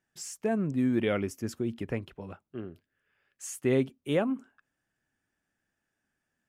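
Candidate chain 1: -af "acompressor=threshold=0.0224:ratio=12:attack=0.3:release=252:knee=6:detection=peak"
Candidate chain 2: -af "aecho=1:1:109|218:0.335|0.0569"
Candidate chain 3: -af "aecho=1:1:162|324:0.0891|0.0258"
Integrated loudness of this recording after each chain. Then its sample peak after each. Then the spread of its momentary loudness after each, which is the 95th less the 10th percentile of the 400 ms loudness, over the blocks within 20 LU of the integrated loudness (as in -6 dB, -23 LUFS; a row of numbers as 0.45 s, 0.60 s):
-42.0 LUFS, -30.0 LUFS, -30.5 LUFS; -30.0 dBFS, -13.5 dBFS, -15.0 dBFS; 7 LU, 15 LU, 15 LU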